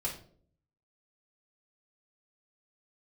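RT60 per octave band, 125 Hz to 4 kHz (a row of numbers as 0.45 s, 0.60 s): 0.85 s, 0.75 s, 0.65 s, 0.45 s, 0.35 s, 0.35 s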